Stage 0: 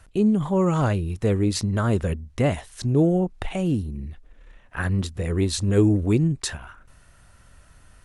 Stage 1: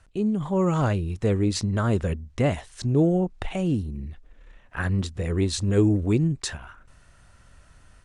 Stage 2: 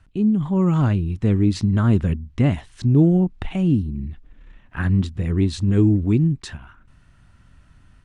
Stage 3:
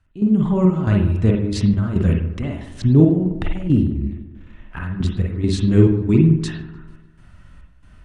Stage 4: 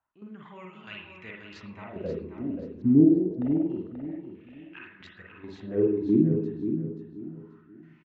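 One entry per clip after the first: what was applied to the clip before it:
AGC gain up to 4.5 dB; LPF 9200 Hz 24 dB/oct; gain -5.5 dB
bell 300 Hz +9 dB 2.6 oct; vocal rider 2 s; EQ curve 120 Hz 0 dB, 280 Hz -5 dB, 500 Hz -15 dB, 920 Hz -6 dB, 3100 Hz -2 dB, 6600 Hz -9 dB; gain +1.5 dB
step gate ".xx.xx.x" 69 bpm -12 dB; dark delay 0.149 s, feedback 48%, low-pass 1700 Hz, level -12 dB; reverb, pre-delay 44 ms, DRR 0.5 dB; gain +2.5 dB
wah 0.27 Hz 250–2700 Hz, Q 3.9; feedback echo 0.533 s, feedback 29%, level -8 dB; downsampling 16000 Hz

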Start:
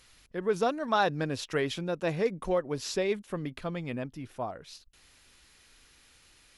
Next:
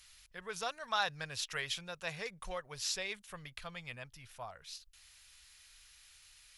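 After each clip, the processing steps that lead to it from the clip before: passive tone stack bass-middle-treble 10-0-10; gain +2 dB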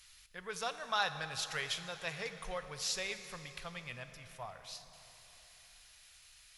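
plate-style reverb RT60 3.9 s, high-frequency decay 0.75×, DRR 9 dB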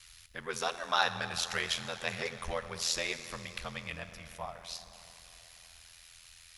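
ring modulator 42 Hz; gain +7.5 dB

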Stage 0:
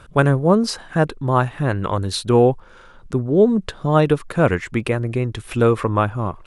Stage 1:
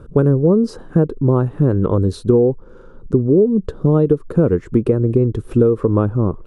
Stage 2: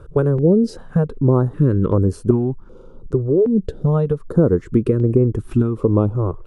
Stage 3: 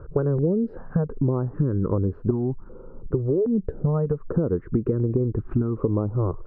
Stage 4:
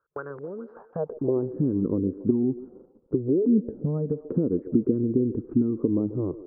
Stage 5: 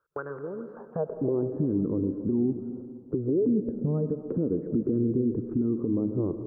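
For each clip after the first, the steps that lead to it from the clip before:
EQ curve 110 Hz 0 dB, 460 Hz +9 dB, 680 Hz -6 dB, 1300 Hz -5 dB, 2100 Hz -17 dB, 5700 Hz -12 dB; compressor 6:1, threshold -14 dBFS, peak gain reduction 12.5 dB; low shelf 260 Hz +7 dB; gain +1 dB
stepped notch 2.6 Hz 220–3800 Hz
LPF 1600 Hz 24 dB/oct; compressor, threshold -19 dBFS, peak gain reduction 10.5 dB
band-pass sweep 1500 Hz -> 270 Hz, 0.48–1.56; gate -50 dBFS, range -25 dB; delay with a stepping band-pass 0.14 s, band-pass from 400 Hz, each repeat 0.7 oct, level -12 dB; gain +5 dB
limiter -18.5 dBFS, peak gain reduction 9 dB; on a send at -11 dB: reverb RT60 1.9 s, pre-delay 65 ms

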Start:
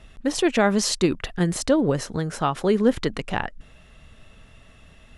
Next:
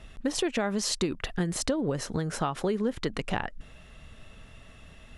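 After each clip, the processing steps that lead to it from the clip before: compressor 6:1, threshold -25 dBFS, peak gain reduction 12 dB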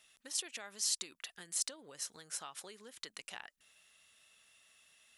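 differentiator; gain -1.5 dB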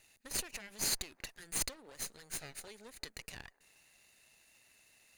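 minimum comb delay 0.45 ms; band-limited delay 0.177 s, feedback 59%, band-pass 750 Hz, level -23 dB; gain +2 dB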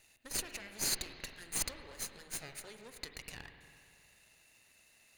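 spring tank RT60 2.5 s, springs 45/59 ms, chirp 60 ms, DRR 6.5 dB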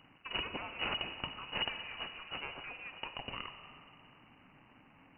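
crackle 360/s -52 dBFS; inverted band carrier 2900 Hz; gain +6 dB

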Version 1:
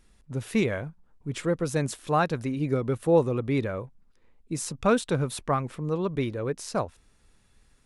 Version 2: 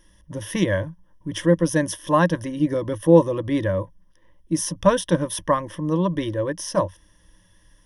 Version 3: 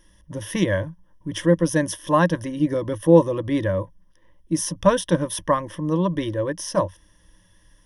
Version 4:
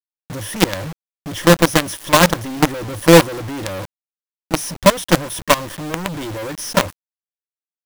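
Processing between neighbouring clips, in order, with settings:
ripple EQ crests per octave 1.2, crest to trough 17 dB; gain +3 dB
nothing audible
companded quantiser 2-bit; gain -1 dB

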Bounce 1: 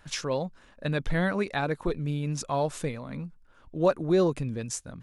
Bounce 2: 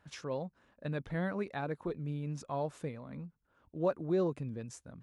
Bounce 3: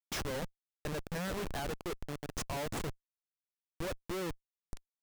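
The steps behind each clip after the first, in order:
HPF 66 Hz; high shelf 2300 Hz -10 dB; gain -7.5 dB
ending faded out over 1.43 s; RIAA curve recording; Schmitt trigger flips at -41.5 dBFS; gain +6 dB

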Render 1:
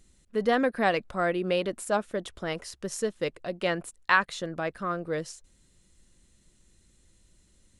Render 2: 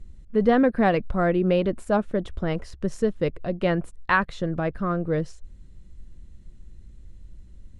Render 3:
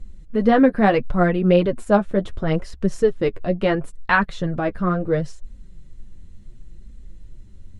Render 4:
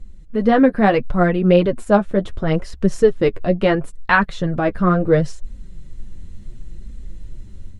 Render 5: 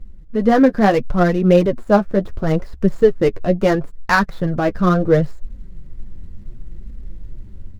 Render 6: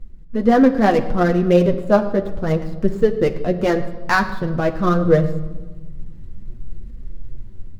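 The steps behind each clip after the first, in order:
RIAA curve playback; gain +2 dB
flange 0.72 Hz, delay 3.8 ms, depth 7.6 ms, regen +21%; gain +7.5 dB
AGC gain up to 7.5 dB
median filter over 15 samples; gain +1 dB
reverb RT60 1.3 s, pre-delay 8 ms, DRR 7 dB; gain -2 dB

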